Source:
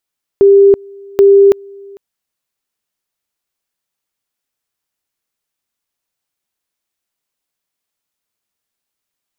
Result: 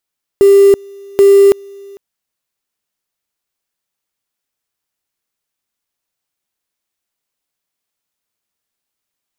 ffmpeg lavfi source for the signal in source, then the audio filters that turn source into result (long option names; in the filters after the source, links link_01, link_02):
-f lavfi -i "aevalsrc='pow(10,(-2.5-28*gte(mod(t,0.78),0.33))/20)*sin(2*PI*397*t)':duration=1.56:sample_rate=44100"
-af "acrusher=bits=5:mode=log:mix=0:aa=0.000001"